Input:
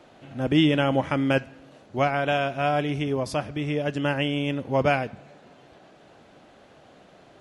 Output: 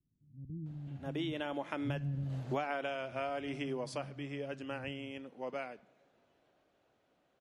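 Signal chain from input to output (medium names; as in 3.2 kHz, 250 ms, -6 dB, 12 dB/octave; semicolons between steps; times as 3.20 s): Doppler pass-by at 2.08 s, 16 m/s, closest 1.7 m; bands offset in time lows, highs 660 ms, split 190 Hz; compression 20:1, threshold -43 dBFS, peak gain reduction 22 dB; trim +10.5 dB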